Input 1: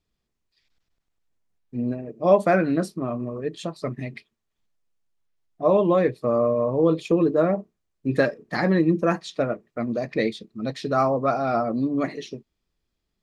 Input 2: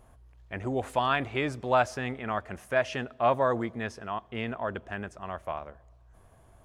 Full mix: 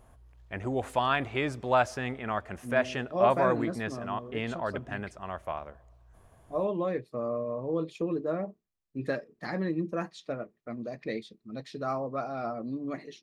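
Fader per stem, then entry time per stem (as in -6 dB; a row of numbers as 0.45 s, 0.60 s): -11.0 dB, -0.5 dB; 0.90 s, 0.00 s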